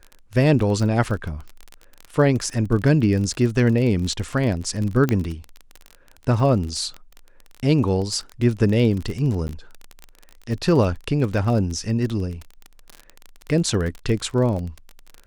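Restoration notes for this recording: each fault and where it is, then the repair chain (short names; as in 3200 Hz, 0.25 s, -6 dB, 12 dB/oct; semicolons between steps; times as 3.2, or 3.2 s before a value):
crackle 27/s -26 dBFS
5.09 pop -9 dBFS
9.48–9.49 gap 9.7 ms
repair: de-click; interpolate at 9.48, 9.7 ms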